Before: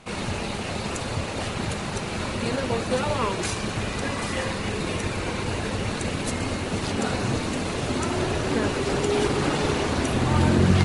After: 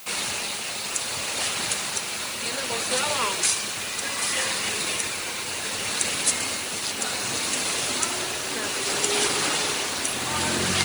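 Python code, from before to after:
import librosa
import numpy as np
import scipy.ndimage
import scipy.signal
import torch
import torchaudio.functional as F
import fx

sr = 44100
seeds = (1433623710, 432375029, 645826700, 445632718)

y = x * (1.0 - 0.36 / 2.0 + 0.36 / 2.0 * np.cos(2.0 * np.pi * 0.65 * (np.arange(len(x)) / sr)))
y = fx.quant_dither(y, sr, seeds[0], bits=10, dither='triangular')
y = fx.tilt_eq(y, sr, slope=4.5)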